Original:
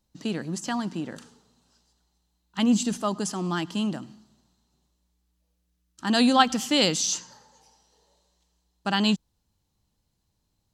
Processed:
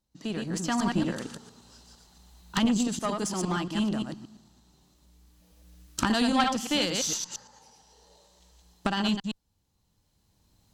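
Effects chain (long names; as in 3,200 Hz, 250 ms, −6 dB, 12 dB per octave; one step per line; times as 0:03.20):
delay that plays each chunk backwards 115 ms, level −4 dB
camcorder AGC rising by 10 dB per second
tube saturation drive 7 dB, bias 0.75
level −2 dB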